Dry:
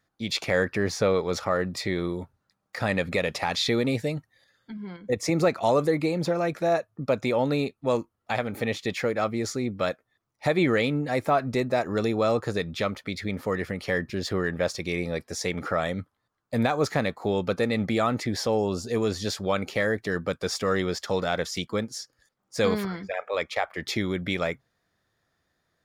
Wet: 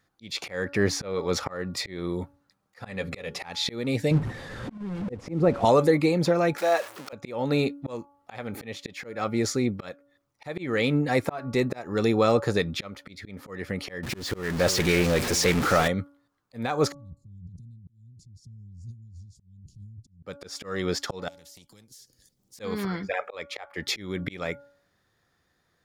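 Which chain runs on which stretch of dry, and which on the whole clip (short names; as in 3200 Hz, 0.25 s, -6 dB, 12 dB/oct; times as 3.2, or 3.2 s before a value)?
2.79–3.4 notches 60/120/180/240/300/360/420/480 Hz + upward compressor, threshold -41 dBFS + notch comb 310 Hz
4.11–5.65 delta modulation 64 kbps, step -33.5 dBFS + LPF 1100 Hz 6 dB/oct + low shelf 490 Hz +9 dB
6.58–7.13 zero-crossing step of -35 dBFS + HPF 540 Hz
14.03–15.88 zero-crossing step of -26.5 dBFS + echo 0.349 s -16.5 dB + Doppler distortion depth 0.18 ms
16.92–20.24 inverse Chebyshev band-stop 580–1900 Hz, stop band 80 dB + negative-ratio compressor -47 dBFS + tape spacing loss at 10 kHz 30 dB
21.28–22.6 EQ curve 160 Hz 0 dB, 1300 Hz -28 dB, 5500 Hz -5 dB + compressor 4:1, threshold -51 dBFS + spectral compressor 2:1
whole clip: notch 640 Hz, Q 12; de-hum 283.8 Hz, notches 5; auto swell 0.357 s; gain +3.5 dB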